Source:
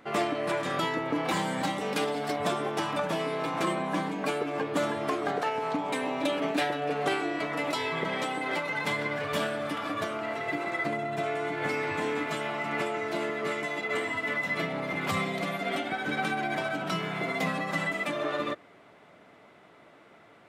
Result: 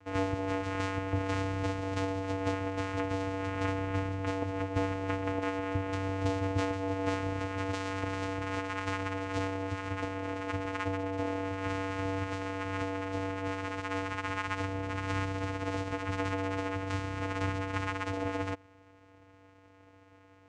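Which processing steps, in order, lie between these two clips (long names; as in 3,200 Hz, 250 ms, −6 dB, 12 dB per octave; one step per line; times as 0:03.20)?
low-shelf EQ 380 Hz −9 dB
channel vocoder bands 4, square 96.2 Hz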